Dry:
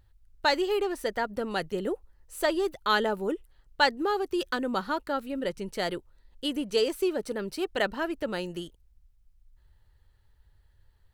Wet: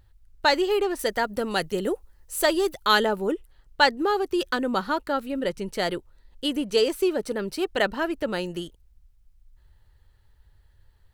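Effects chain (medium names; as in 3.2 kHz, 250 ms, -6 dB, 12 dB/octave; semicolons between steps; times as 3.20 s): 0.99–3.05 s: treble shelf 4.4 kHz +8 dB; trim +4 dB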